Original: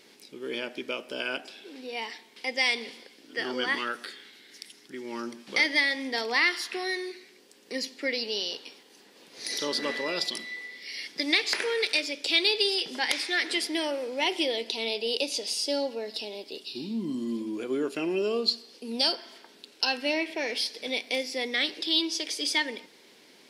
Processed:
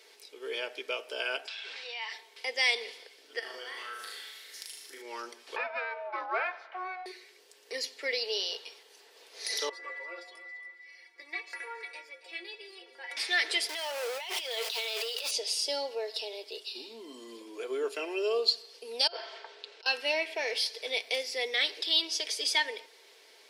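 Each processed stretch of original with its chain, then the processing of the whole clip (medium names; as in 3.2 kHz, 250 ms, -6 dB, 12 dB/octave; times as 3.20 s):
1.47–2.12 s: high-pass 1.3 kHz + distance through air 120 m + level flattener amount 70%
3.39–5.02 s: treble shelf 7.3 kHz +12 dB + compression 8:1, threshold -39 dBFS + flutter echo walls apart 6.5 m, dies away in 0.76 s
5.56–7.06 s: resonant low-pass 1.1 kHz, resonance Q 1.9 + ring modulator 370 Hz
9.69–13.17 s: resonant high shelf 2.7 kHz -9.5 dB, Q 1.5 + inharmonic resonator 170 Hz, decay 0.24 s, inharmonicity 0.008 + feedback delay 276 ms, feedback 31%, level -14 dB
13.69–15.31 s: jump at every zero crossing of -31.5 dBFS + Bessel high-pass 780 Hz + compressor with a negative ratio -34 dBFS
19.07–19.86 s: high-pass 340 Hz 24 dB/octave + compressor with a negative ratio -39 dBFS + distance through air 150 m
whole clip: inverse Chebyshev high-pass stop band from 200 Hz, stop band 40 dB; comb 4.5 ms, depth 39%; trim -1.5 dB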